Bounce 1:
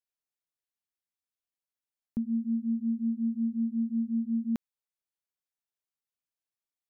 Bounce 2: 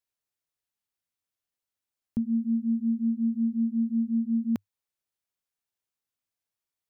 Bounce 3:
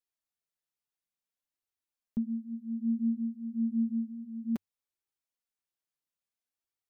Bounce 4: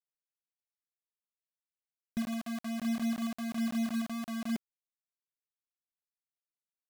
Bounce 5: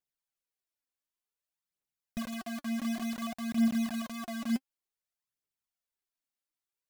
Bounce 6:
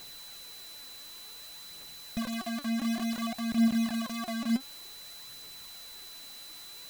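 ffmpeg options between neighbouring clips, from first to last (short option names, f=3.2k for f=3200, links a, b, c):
-af "equalizer=f=100:t=o:w=0.37:g=7.5,volume=3dB"
-af "flanger=delay=2.2:depth=4.8:regen=-5:speed=0.59:shape=triangular,volume=-2dB"
-af "aresample=8000,asoftclip=type=tanh:threshold=-31.5dB,aresample=44100,acrusher=bits=6:mix=0:aa=0.000001,volume=2dB"
-af "aphaser=in_gain=1:out_gain=1:delay=4:decay=0.55:speed=0.55:type=triangular"
-af "aeval=exprs='val(0)+0.5*0.00794*sgn(val(0))':c=same,aeval=exprs='val(0)+0.00398*sin(2*PI*4000*n/s)':c=same,volume=1.5dB"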